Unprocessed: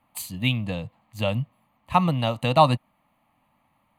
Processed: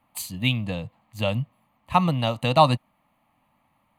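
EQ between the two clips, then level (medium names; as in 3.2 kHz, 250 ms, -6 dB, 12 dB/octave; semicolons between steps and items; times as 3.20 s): dynamic bell 5.4 kHz, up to +4 dB, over -41 dBFS, Q 1.2; 0.0 dB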